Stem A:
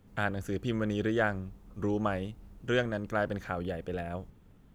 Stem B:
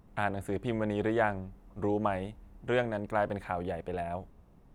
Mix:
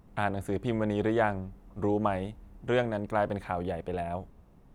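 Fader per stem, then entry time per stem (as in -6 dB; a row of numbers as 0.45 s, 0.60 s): -15.0 dB, +1.5 dB; 0.00 s, 0.00 s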